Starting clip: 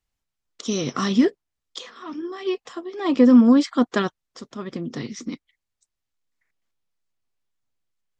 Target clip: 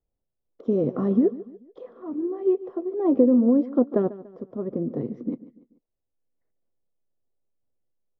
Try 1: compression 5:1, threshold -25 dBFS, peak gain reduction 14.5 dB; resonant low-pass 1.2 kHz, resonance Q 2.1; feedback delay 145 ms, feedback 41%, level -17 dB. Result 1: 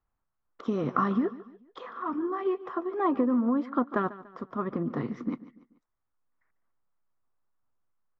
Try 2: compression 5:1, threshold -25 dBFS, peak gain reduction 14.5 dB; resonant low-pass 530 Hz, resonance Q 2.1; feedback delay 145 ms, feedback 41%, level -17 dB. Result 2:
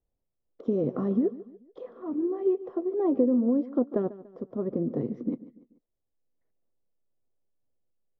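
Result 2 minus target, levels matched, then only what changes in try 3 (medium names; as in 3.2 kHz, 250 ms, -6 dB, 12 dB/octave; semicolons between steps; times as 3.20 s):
compression: peak gain reduction +5.5 dB
change: compression 5:1, threshold -18 dBFS, peak gain reduction 9 dB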